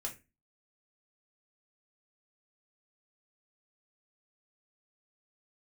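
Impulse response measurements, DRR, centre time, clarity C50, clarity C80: −1.0 dB, 13 ms, 13.0 dB, 20.0 dB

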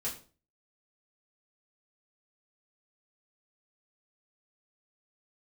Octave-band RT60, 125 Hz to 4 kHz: 0.50, 0.45, 0.45, 0.35, 0.30, 0.30 seconds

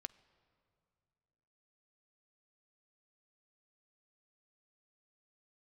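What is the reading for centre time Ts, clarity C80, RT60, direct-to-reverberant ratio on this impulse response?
3 ms, 21.0 dB, 2.4 s, 15.0 dB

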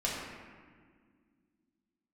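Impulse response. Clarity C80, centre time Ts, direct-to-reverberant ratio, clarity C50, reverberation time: 2.0 dB, 93 ms, −6.0 dB, 0.0 dB, 1.8 s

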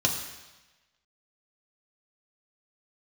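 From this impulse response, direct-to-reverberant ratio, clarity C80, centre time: 0.5 dB, 8.0 dB, 33 ms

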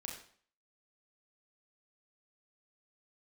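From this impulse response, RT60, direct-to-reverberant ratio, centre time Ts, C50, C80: 0.50 s, −0.5 dB, 33 ms, 5.0 dB, 8.5 dB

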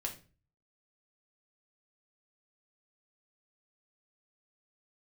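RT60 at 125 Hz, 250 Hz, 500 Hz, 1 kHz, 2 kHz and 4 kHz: 0.65, 0.50, 0.40, 0.30, 0.35, 0.30 seconds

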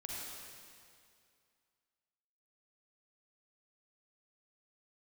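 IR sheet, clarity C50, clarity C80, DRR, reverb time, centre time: −3.5 dB, −1.5 dB, −4.0 dB, 2.3 s, 151 ms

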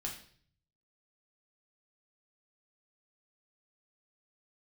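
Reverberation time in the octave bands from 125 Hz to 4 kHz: 1.1, 0.65, 0.55, 0.45, 0.50, 0.55 seconds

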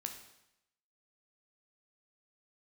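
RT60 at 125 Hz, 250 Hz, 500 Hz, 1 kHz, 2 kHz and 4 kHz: 0.85, 0.85, 0.80, 0.85, 0.85, 0.85 seconds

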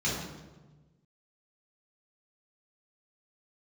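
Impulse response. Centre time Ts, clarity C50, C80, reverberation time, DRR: 66 ms, 1.0 dB, 4.0 dB, 1.2 s, −7.5 dB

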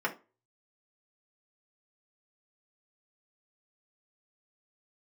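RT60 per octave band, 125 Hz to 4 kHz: 0.40, 0.30, 0.30, 0.30, 0.25, 0.20 seconds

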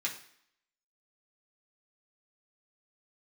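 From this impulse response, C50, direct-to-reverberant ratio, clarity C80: 9.5 dB, −3.5 dB, 13.5 dB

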